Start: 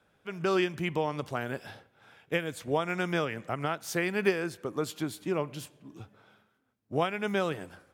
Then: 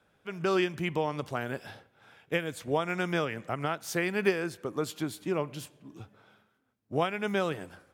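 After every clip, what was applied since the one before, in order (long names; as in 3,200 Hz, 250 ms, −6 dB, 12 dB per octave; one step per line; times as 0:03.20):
no processing that can be heard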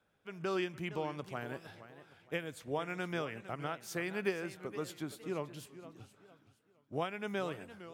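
feedback echo with a swinging delay time 464 ms, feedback 32%, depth 197 cents, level −14 dB
level −8 dB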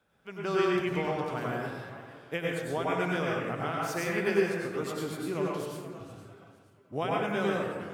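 dense smooth reverb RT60 1.1 s, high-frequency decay 0.45×, pre-delay 85 ms, DRR −3.5 dB
level +3 dB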